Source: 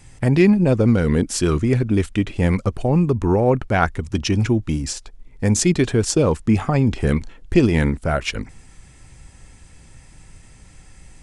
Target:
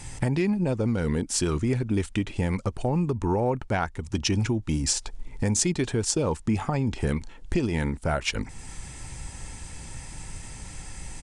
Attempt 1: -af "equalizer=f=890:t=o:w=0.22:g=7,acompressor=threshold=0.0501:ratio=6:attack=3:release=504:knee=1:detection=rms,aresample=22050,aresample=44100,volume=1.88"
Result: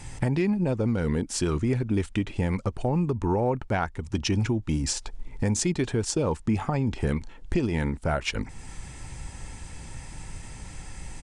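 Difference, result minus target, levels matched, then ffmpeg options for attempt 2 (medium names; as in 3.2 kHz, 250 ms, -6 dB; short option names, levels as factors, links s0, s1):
8 kHz band -3.5 dB
-af "equalizer=f=890:t=o:w=0.22:g=7,acompressor=threshold=0.0501:ratio=6:attack=3:release=504:knee=1:detection=rms,highshelf=f=4700:g=6,aresample=22050,aresample=44100,volume=1.88"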